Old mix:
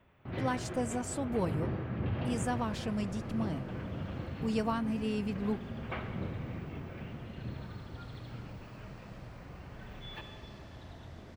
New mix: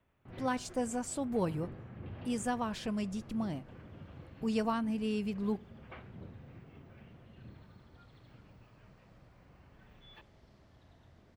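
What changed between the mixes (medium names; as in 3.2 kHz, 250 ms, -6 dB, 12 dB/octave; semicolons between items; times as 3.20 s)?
first sound -7.0 dB; second sound -12.0 dB; reverb: off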